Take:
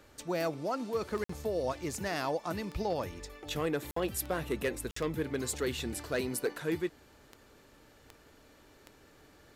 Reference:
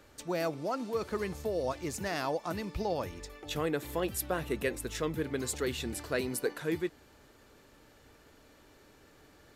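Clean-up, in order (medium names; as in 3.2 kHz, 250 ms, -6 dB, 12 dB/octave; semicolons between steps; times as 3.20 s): clip repair -24 dBFS; de-click; interpolate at 1.24/3.91/4.91 s, 54 ms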